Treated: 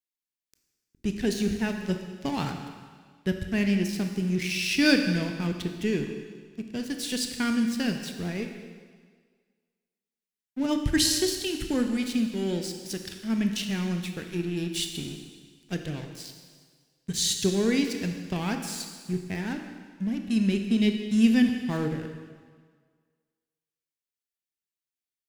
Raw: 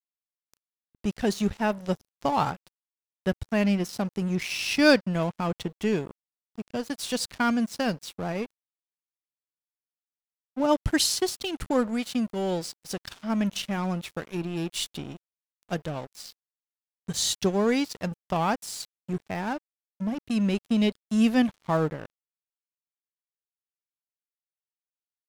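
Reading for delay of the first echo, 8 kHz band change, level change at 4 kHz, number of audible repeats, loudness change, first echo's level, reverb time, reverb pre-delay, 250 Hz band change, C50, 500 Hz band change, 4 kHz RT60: none, +1.0 dB, +1.0 dB, none, 0.0 dB, none, 1.7 s, 18 ms, +1.0 dB, 6.0 dB, -3.5 dB, 1.6 s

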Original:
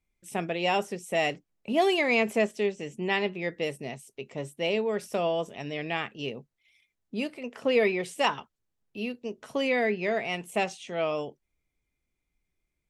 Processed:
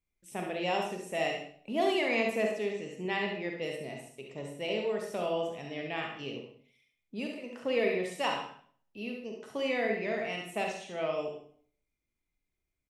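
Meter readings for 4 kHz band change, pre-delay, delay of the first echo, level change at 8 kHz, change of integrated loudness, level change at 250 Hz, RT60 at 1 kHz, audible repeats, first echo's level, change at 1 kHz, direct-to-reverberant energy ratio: -4.5 dB, 36 ms, 70 ms, -4.5 dB, -4.5 dB, -4.5 dB, 0.50 s, 1, -6.5 dB, -4.5 dB, 1.0 dB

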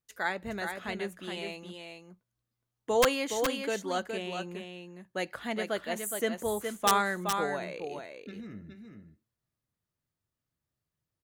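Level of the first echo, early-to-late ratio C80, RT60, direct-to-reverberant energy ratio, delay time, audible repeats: -6.0 dB, none, none, none, 0.417 s, 1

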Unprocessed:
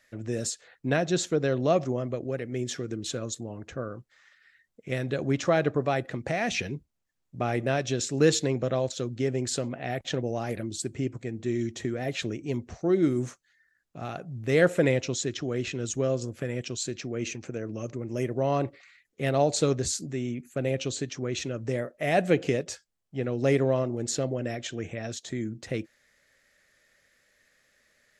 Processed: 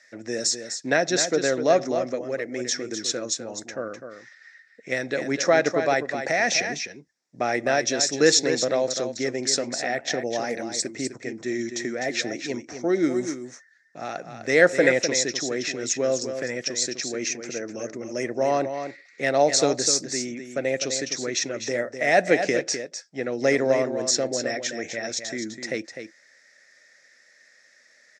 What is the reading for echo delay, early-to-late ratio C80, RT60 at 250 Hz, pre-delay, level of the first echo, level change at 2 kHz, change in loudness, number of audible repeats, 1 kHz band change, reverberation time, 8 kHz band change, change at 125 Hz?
0.253 s, none, none, none, -8.5 dB, +9.0 dB, +4.5 dB, 1, +5.5 dB, none, +9.5 dB, -9.0 dB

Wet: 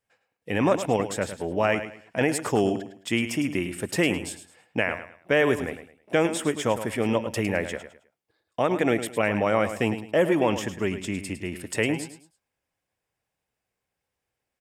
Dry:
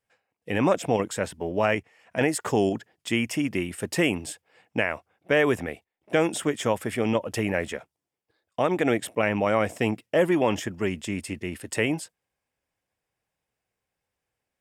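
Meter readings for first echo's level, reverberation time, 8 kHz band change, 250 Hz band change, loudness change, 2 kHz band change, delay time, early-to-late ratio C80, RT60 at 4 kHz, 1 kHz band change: -11.0 dB, none, +0.5 dB, +0.5 dB, +0.5 dB, +0.5 dB, 0.106 s, none, none, +0.5 dB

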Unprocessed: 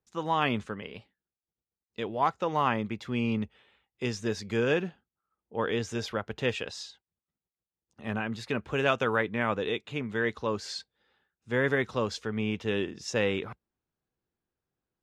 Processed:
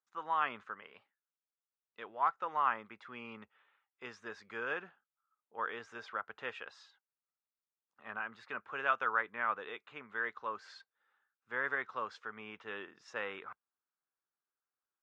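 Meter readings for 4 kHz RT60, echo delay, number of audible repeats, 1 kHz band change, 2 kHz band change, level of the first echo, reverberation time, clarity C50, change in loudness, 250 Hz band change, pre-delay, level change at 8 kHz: none, none, none, -3.5 dB, -5.0 dB, none, none, none, -7.5 dB, -21.5 dB, none, under -20 dB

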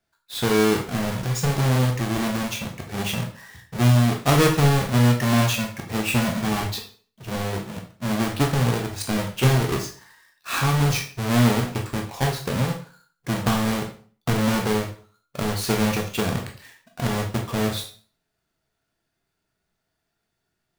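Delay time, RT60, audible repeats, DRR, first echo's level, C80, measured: none, 0.45 s, none, 1.5 dB, none, 13.0 dB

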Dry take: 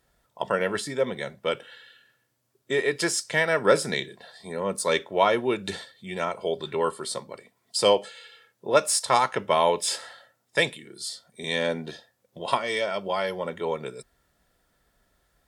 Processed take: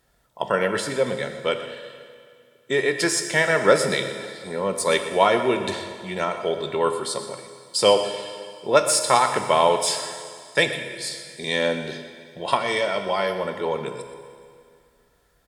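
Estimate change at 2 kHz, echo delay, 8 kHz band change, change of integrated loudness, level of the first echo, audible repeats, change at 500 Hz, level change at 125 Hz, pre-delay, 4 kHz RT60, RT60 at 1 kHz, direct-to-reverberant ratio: +4.0 dB, 0.123 s, +4.0 dB, +3.5 dB, -14.0 dB, 1, +3.5 dB, +3.5 dB, 15 ms, 2.1 s, 2.2 s, 6.5 dB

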